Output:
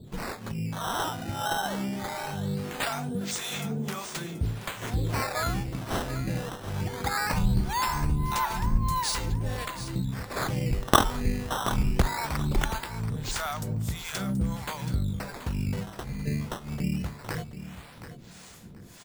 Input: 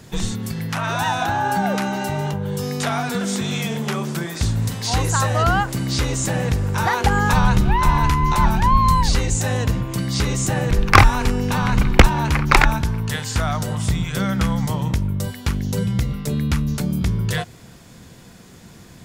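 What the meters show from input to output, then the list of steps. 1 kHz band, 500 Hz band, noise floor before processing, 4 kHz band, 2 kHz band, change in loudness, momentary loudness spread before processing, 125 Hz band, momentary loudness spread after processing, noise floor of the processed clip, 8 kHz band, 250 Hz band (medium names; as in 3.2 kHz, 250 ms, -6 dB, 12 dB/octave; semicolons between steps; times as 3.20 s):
-10.5 dB, -9.0 dB, -44 dBFS, -7.5 dB, -11.5 dB, -10.0 dB, 9 LU, -10.0 dB, 9 LU, -47 dBFS, -8.5 dB, -9.5 dB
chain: spectral selection erased 10.00–10.30 s, 260–6900 Hz; treble shelf 6.7 kHz +9 dB; in parallel at +1.5 dB: compression, threshold -30 dBFS, peak gain reduction 23.5 dB; on the sum: harmonic tremolo 1.6 Hz, depth 100%, crossover 530 Hz; decimation with a swept rate 11×, swing 160% 0.2 Hz; on a send: feedback delay 729 ms, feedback 22%, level -12 dB; on the sum: trim -8 dB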